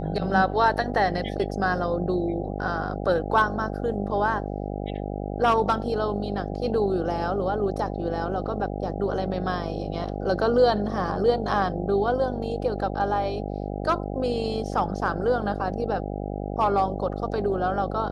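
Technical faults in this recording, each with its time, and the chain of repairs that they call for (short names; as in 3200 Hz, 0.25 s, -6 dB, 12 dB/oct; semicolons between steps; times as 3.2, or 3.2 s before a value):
buzz 50 Hz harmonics 16 -31 dBFS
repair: de-hum 50 Hz, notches 16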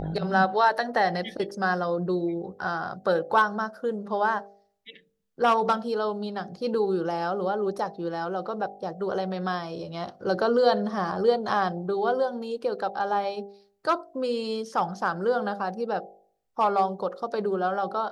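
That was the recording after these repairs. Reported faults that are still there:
none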